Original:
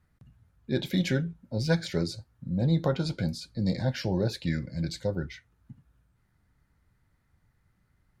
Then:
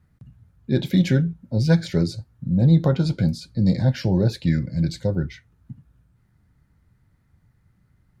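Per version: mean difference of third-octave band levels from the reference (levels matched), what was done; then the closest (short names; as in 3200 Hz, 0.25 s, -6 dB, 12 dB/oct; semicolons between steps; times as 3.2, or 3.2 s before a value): 3.5 dB: bell 130 Hz +8 dB 2.7 oct; gain +2 dB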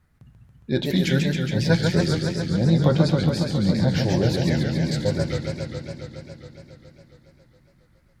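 8.5 dB: warbling echo 0.138 s, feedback 80%, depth 189 cents, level -4.5 dB; gain +5 dB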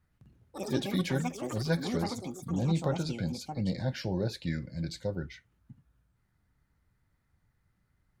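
4.5 dB: echoes that change speed 0.117 s, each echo +7 st, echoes 3, each echo -6 dB; gain -4 dB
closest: first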